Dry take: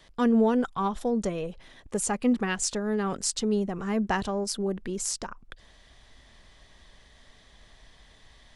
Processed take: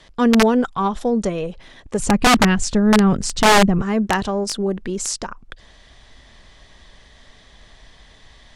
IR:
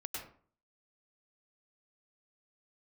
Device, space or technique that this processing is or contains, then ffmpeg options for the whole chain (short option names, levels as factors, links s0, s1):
overflowing digital effects unit: -filter_complex "[0:a]asettb=1/sr,asplit=3[s0][s1][s2];[s0]atrim=end=1.994[s3];[s1]atrim=start=1.99:end=3.82,asetpts=PTS-STARTPTS,afade=t=in:d=0.004:c=qsin,afade=t=out:st=1.826:d=0.004:c=qsin,bass=f=250:g=14,treble=f=4000:g=-4[s4];[s2]atrim=start=3.816[s5];[s3][s4]acrossfade=d=0.004:c1=hsin:c2=qsin[s6];[s6][s5]acrossfade=d=0.004:c1=qsin:c2=hsin,aeval=exprs='(mod(5.31*val(0)+1,2)-1)/5.31':c=same,lowpass=8900,volume=2.37"